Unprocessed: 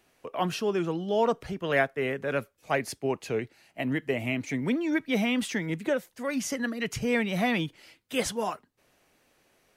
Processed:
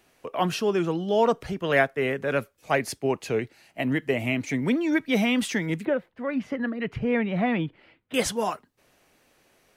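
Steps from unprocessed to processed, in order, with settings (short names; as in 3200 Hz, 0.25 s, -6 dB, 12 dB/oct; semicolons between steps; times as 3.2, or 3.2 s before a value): 5.85–8.14 air absorption 490 m; gain +3.5 dB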